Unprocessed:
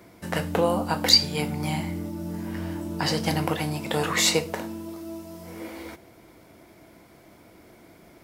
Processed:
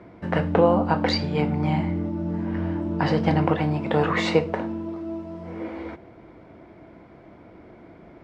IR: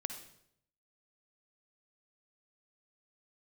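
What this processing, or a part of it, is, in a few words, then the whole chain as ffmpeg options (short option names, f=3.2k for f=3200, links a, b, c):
phone in a pocket: -af "lowpass=3.1k,highshelf=f=2.4k:g=-11.5,volume=5.5dB"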